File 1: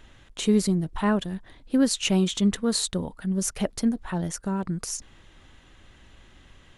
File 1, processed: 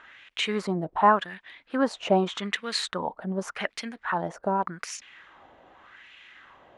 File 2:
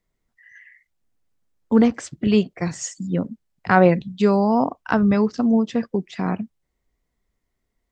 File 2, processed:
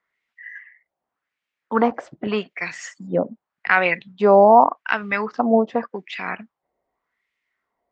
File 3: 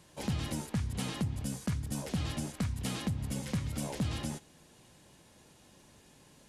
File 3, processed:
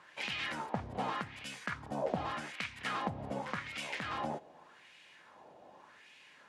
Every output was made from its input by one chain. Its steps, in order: high shelf 6900 Hz -6 dB; wah 0.85 Hz 640–2500 Hz, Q 2.5; maximiser +14.5 dB; gain -1 dB

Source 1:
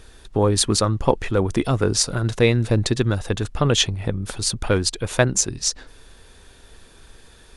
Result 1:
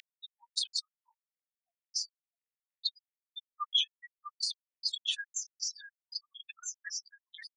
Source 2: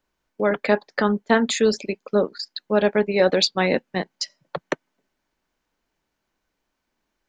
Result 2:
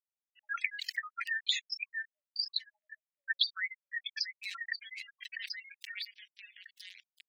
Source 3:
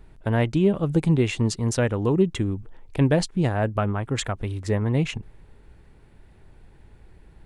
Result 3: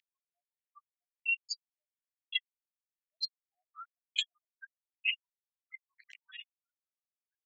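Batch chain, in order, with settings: on a send: echo with dull and thin repeats by turns 0.646 s, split 2300 Hz, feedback 52%, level -10 dB; on the sum: spectral gate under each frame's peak -10 dB strong; LPF 9500 Hz 24 dB/oct; high shelf 7000 Hz -7 dB; bit-crush 8-bit; spectral gate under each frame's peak -20 dB strong; steep high-pass 1800 Hz 72 dB/oct; compressor 16:1, threshold -39 dBFS; bell 3100 Hz +14.5 dB 1.8 oct; backwards sustainer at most 43 dB/s; gain -1.5 dB

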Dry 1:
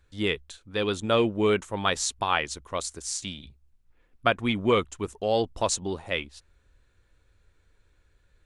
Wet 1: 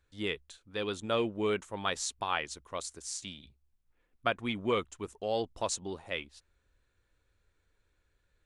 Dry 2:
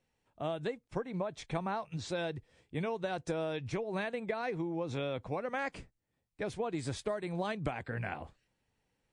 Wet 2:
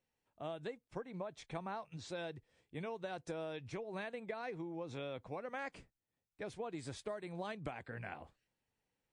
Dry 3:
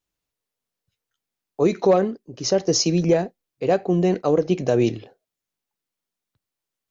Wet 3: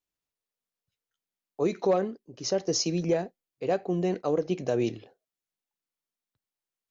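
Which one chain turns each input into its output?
low shelf 160 Hz -4.5 dB; gain -7 dB

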